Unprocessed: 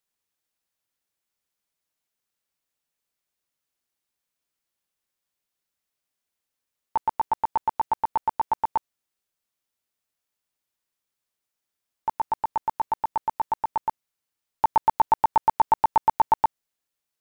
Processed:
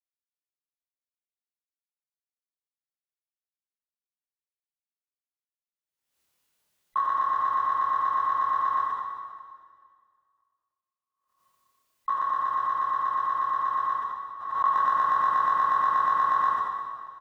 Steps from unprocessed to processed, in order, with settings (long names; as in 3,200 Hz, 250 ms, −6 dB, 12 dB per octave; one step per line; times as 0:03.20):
frequency inversion band by band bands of 2,000 Hz
double-tracking delay 27 ms −3 dB
noise gate −29 dBFS, range −33 dB
downward compressor, threshold −18 dBFS, peak gain reduction 5 dB
convolution reverb RT60 2.0 s, pre-delay 13 ms, DRR −5 dB
background raised ahead of every attack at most 65 dB per second
level −5.5 dB